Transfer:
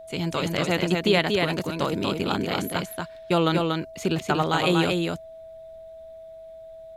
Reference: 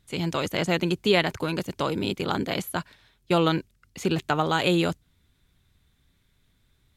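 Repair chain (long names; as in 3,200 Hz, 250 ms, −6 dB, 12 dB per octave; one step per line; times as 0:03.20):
notch filter 650 Hz, Q 30
downward expander −35 dBFS, range −21 dB
echo removal 237 ms −3.5 dB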